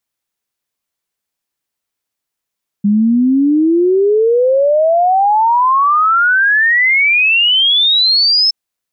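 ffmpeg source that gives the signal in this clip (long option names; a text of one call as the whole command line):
ffmpeg -f lavfi -i "aevalsrc='0.398*clip(min(t,5.67-t)/0.01,0,1)*sin(2*PI*200*5.67/log(5300/200)*(exp(log(5300/200)*t/5.67)-1))':duration=5.67:sample_rate=44100" out.wav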